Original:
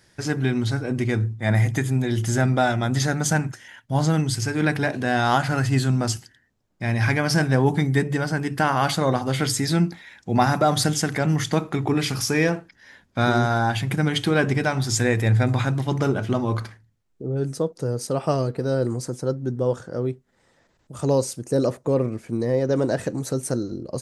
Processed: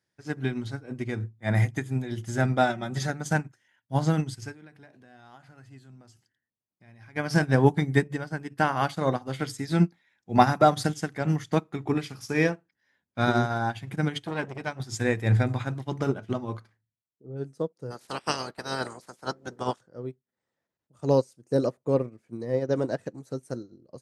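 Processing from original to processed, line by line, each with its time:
2.69–3.1 comb 5.3 ms, depth 58%
4.54–7.16 compressor 2.5:1, threshold -31 dBFS
14.22–14.8 core saturation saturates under 960 Hz
17.9–19.8 spectral limiter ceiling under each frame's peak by 28 dB
whole clip: HPF 90 Hz; high shelf 5000 Hz -3.5 dB; upward expander 2.5:1, over -32 dBFS; gain +3 dB

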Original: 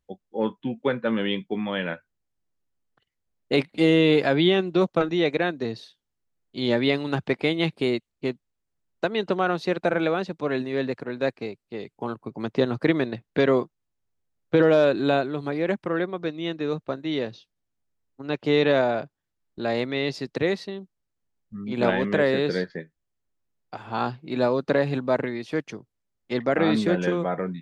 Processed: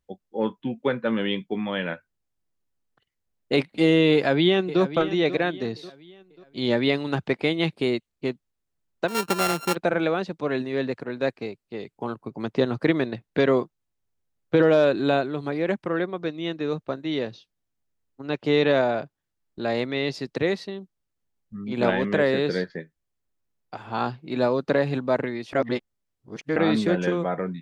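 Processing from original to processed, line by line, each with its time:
4.14–4.81 echo throw 0.54 s, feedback 40%, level -13 dB
9.08–9.75 sample sorter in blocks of 32 samples
25.53–26.56 reverse

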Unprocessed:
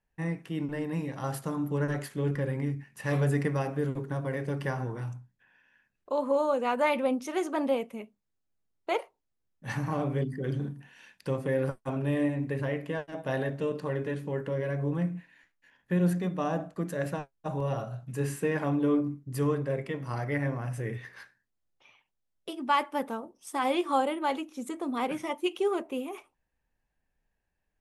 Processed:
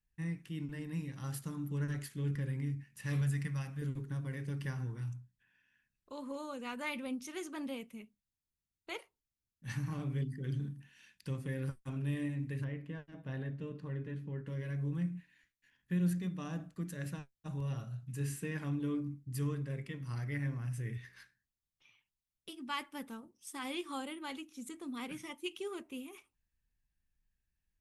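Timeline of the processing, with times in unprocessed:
3.21–3.82 bell 360 Hz -14 dB
12.64–14.47 LPF 1400 Hz 6 dB/oct
whole clip: passive tone stack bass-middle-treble 6-0-2; gain +11 dB

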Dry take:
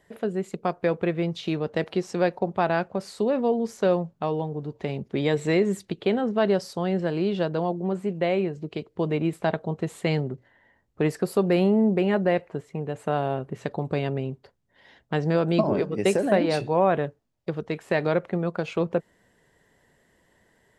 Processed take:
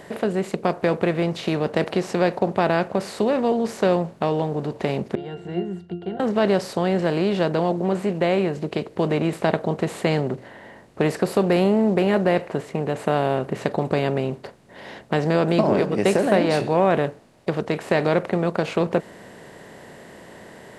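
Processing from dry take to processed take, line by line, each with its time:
5.15–6.2 octave resonator F, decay 0.24 s
whole clip: per-bin compression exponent 0.6

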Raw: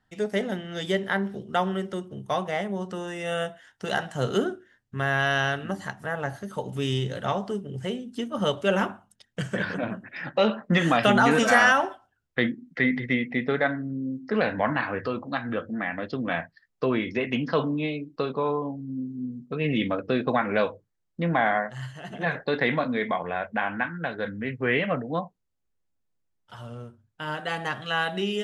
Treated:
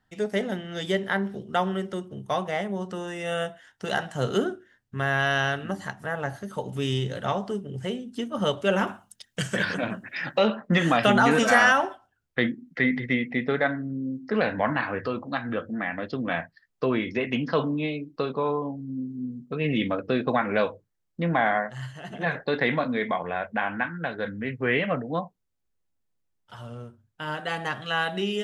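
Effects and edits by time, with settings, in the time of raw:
8.87–10.39 high shelf 2500 Hz +11.5 dB

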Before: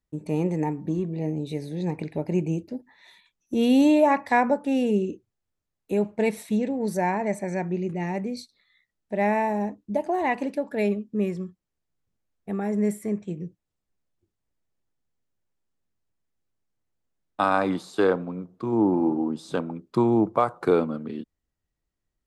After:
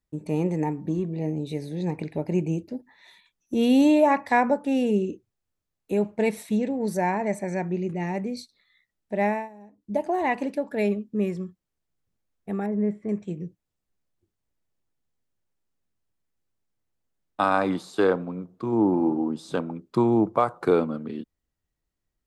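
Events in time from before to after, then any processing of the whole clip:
9.25–9.96 dip -20.5 dB, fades 0.24 s
12.66–13.09 tape spacing loss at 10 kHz 40 dB

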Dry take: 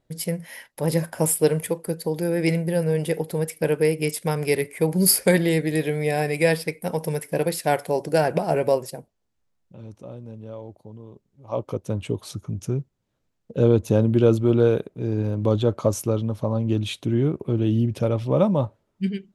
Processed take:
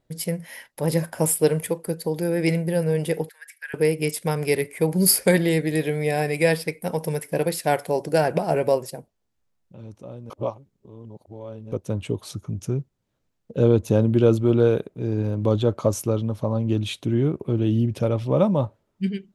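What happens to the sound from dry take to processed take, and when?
3.29–3.74 ladder high-pass 1600 Hz, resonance 80%
10.3–11.72 reverse

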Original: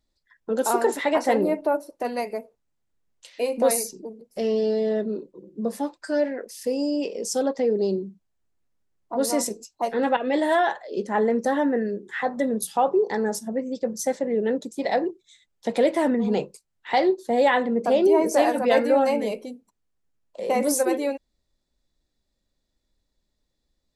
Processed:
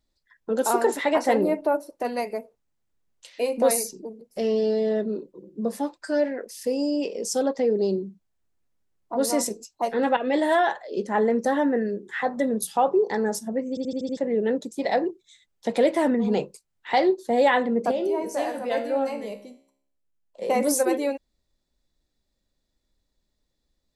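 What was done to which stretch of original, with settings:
13.69 stutter in place 0.08 s, 6 plays
17.91–20.42 resonator 68 Hz, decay 0.65 s, mix 70%

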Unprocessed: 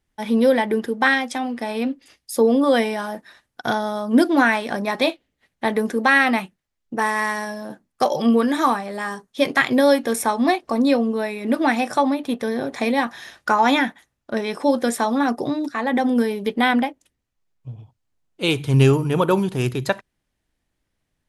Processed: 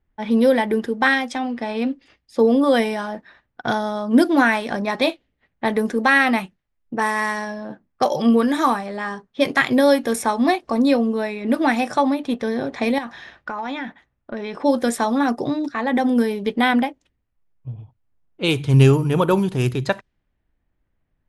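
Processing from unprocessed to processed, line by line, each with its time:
12.98–14.55 compressor, threshold -25 dBFS
whole clip: low shelf 100 Hz +7.5 dB; low-pass opened by the level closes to 2000 Hz, open at -15.5 dBFS

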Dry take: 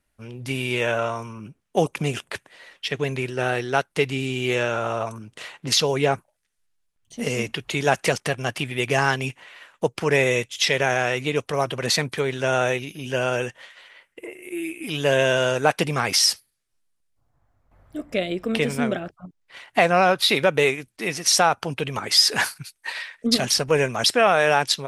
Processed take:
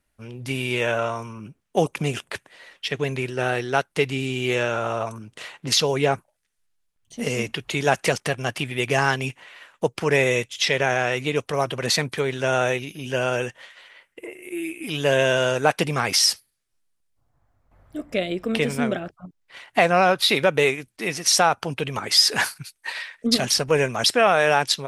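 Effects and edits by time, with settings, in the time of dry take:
10.53–11.12 high shelf 8400 Hz -6.5 dB

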